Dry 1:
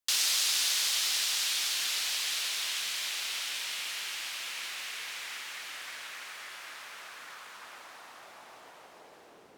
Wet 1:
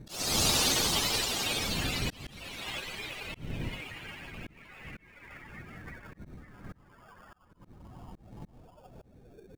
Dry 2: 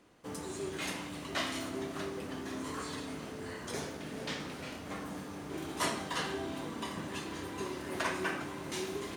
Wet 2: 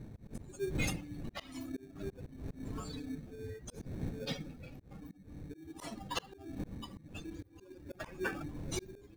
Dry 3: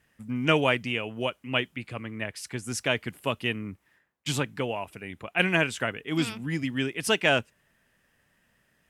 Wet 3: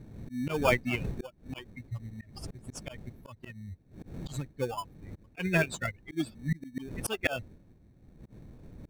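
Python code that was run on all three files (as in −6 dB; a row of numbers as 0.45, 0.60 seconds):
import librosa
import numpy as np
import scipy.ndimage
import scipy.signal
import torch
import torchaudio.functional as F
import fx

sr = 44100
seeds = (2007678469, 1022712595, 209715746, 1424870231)

p1 = fx.bin_expand(x, sr, power=3.0)
p2 = fx.dmg_wind(p1, sr, seeds[0], corner_hz=190.0, level_db=-51.0)
p3 = fx.sample_hold(p2, sr, seeds[1], rate_hz=2000.0, jitter_pct=0)
p4 = p2 + (p3 * 10.0 ** (-5.5 / 20.0))
p5 = fx.auto_swell(p4, sr, attack_ms=404.0)
y = p5 * 10.0 ** (8.5 / 20.0)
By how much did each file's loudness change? 0.0, −4.5, −6.0 LU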